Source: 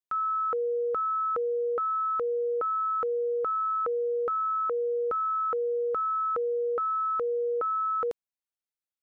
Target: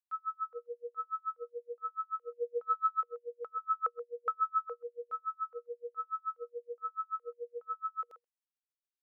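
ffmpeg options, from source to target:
-filter_complex "[0:a]highpass=600,asplit=3[a][b][c];[a]afade=t=out:st=2.31:d=0.02[d];[b]acontrast=90,afade=t=in:st=2.31:d=0.02,afade=t=out:st=2.99:d=0.02[e];[c]afade=t=in:st=2.99:d=0.02[f];[d][e][f]amix=inputs=3:normalize=0,asettb=1/sr,asplit=3[g][h][i];[g]atrim=end=3.634[j];[h]atrim=start=3.63:end=4.69,asetpts=PTS-STARTPTS,afade=t=in:d=0.004:c=qsin,afade=t=out:st=1.056:d=0.004:c=qsin,equalizer=f=1.3k:t=o:w=0.77:g=6[k];[i]atrim=start=4.686[l];[j][k]acrossfade=d=0.004:c1=hsin:c2=qsin[m];[m][l]acrossfade=d=0.004:c1=qsin:c2=hsin,aecho=1:1:130:0.126,aeval=exprs='val(0)*pow(10,-40*(0.5-0.5*cos(2*PI*7*n/s))/20)':c=same,volume=-4dB"

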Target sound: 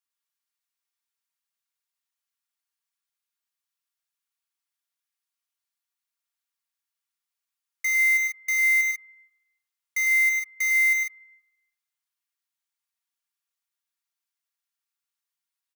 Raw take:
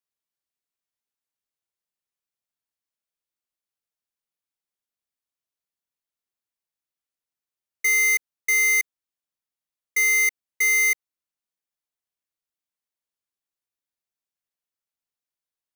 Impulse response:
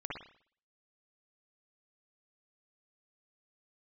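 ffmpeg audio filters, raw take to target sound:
-filter_complex "[0:a]highpass=f=920:w=0.5412,highpass=f=920:w=1.3066,aecho=1:1:4.3:0.55,alimiter=limit=-17dB:level=0:latency=1,aecho=1:1:102|145.8:0.501|0.501,asplit=2[a][b];[1:a]atrim=start_sample=2205,asetrate=25137,aresample=44100[c];[b][c]afir=irnorm=-1:irlink=0,volume=-23dB[d];[a][d]amix=inputs=2:normalize=0"

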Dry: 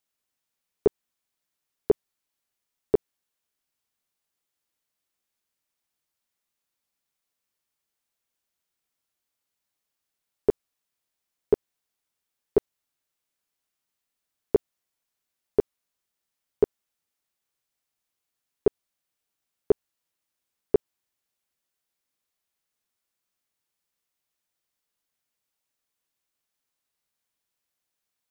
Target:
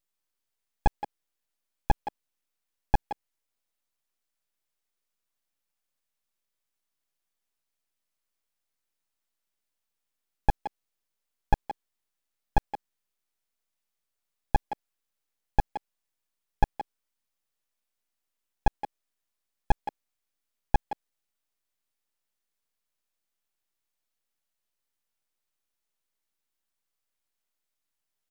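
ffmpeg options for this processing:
-filter_complex "[0:a]aeval=exprs='abs(val(0))':c=same,asplit=2[a][b];[b]adelay=170,highpass=300,lowpass=3.4k,asoftclip=type=hard:threshold=-19.5dB,volume=-7dB[c];[a][c]amix=inputs=2:normalize=0"

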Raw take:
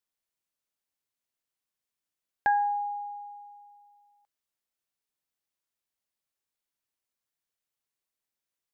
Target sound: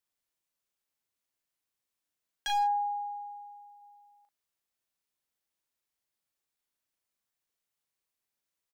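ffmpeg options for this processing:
-filter_complex "[0:a]asplit=3[a][b][c];[a]afade=t=out:st=2.47:d=0.02[d];[b]lowshelf=f=440:g=-11.5,afade=t=in:st=2.47:d=0.02,afade=t=out:st=3.81:d=0.02[e];[c]afade=t=in:st=3.81:d=0.02[f];[d][e][f]amix=inputs=3:normalize=0,aeval=exprs='0.0501*(abs(mod(val(0)/0.0501+3,4)-2)-1)':c=same,asplit=2[g][h];[h]adelay=38,volume=-5dB[i];[g][i]amix=inputs=2:normalize=0"

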